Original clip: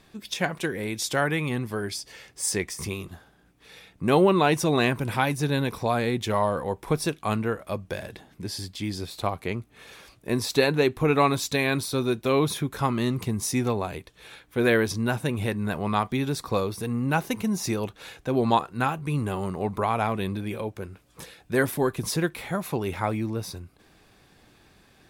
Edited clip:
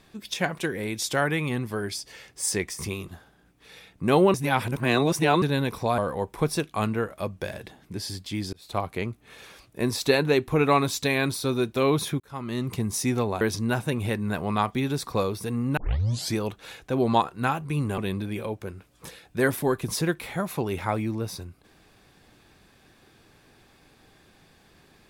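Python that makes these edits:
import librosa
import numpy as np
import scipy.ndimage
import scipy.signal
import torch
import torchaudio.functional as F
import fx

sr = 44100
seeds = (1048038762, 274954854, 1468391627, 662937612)

y = fx.edit(x, sr, fx.reverse_span(start_s=4.34, length_s=1.08),
    fx.cut(start_s=5.98, length_s=0.49),
    fx.fade_in_span(start_s=9.02, length_s=0.27),
    fx.fade_in_span(start_s=12.69, length_s=0.58),
    fx.cut(start_s=13.9, length_s=0.88),
    fx.tape_start(start_s=17.14, length_s=0.58),
    fx.cut(start_s=19.35, length_s=0.78), tone=tone)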